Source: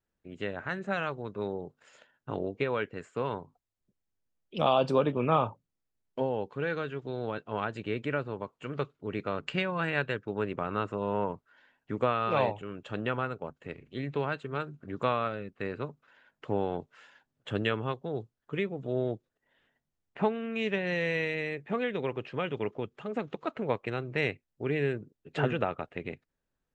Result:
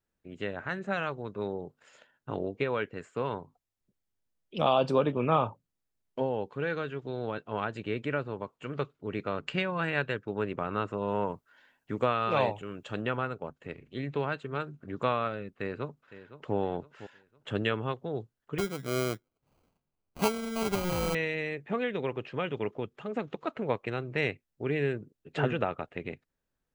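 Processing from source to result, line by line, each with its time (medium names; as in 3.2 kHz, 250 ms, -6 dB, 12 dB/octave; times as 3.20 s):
11.08–13.02 s: treble shelf 5.4 kHz +8.5 dB
15.56–16.55 s: echo throw 510 ms, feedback 40%, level -14.5 dB
18.58–21.15 s: sample-rate reducer 1.8 kHz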